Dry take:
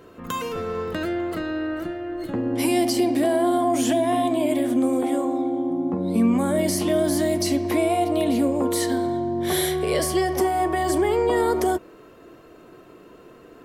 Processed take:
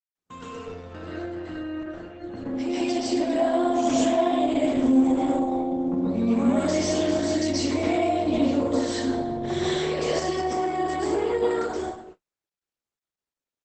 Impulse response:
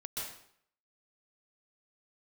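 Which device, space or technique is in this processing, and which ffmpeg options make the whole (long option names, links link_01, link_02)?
speakerphone in a meeting room: -filter_complex "[0:a]asplit=3[link_01][link_02][link_03];[link_01]afade=type=out:start_time=7.95:duration=0.02[link_04];[link_02]highshelf=frequency=4800:gain=-4,afade=type=in:start_time=7.95:duration=0.02,afade=type=out:start_time=9.88:duration=0.02[link_05];[link_03]afade=type=in:start_time=9.88:duration=0.02[link_06];[link_04][link_05][link_06]amix=inputs=3:normalize=0[link_07];[1:a]atrim=start_sample=2205[link_08];[link_07][link_08]afir=irnorm=-1:irlink=0,asplit=2[link_09][link_10];[link_10]adelay=130,highpass=300,lowpass=3400,asoftclip=type=hard:threshold=-17.5dB,volume=-19dB[link_11];[link_09][link_11]amix=inputs=2:normalize=0,dynaudnorm=framelen=360:gausssize=17:maxgain=14dB,agate=range=-48dB:threshold=-35dB:ratio=16:detection=peak,volume=-8.5dB" -ar 48000 -c:a libopus -b:a 12k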